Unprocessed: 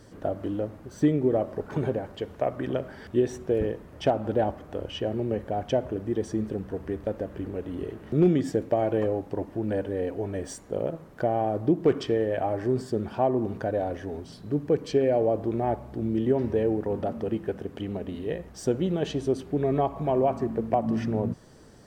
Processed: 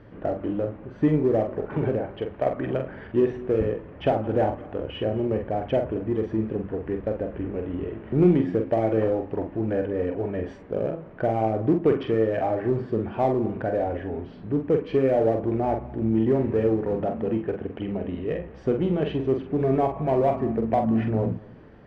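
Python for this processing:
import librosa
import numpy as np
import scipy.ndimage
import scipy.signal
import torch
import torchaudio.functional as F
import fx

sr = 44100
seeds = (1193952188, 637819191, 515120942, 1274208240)

p1 = scipy.signal.sosfilt(scipy.signal.cheby1(3, 1.0, 2600.0, 'lowpass', fs=sr, output='sos'), x)
p2 = np.clip(p1, -10.0 ** (-25.5 / 20.0), 10.0 ** (-25.5 / 20.0))
p3 = p1 + (p2 * librosa.db_to_amplitude(-9.0))
p4 = fx.doubler(p3, sr, ms=45.0, db=-6.0)
y = p4 + 10.0 ** (-23.0 / 20.0) * np.pad(p4, (int(222 * sr / 1000.0), 0))[:len(p4)]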